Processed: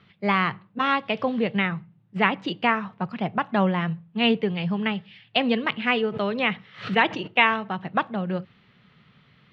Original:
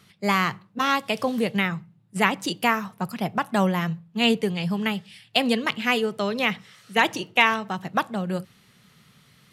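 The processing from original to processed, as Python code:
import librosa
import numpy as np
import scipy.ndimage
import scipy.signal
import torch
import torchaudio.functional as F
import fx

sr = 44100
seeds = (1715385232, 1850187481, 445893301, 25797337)

y = scipy.signal.sosfilt(scipy.signal.butter(4, 3400.0, 'lowpass', fs=sr, output='sos'), x)
y = fx.pre_swell(y, sr, db_per_s=130.0, at=(5.93, 7.26), fade=0.02)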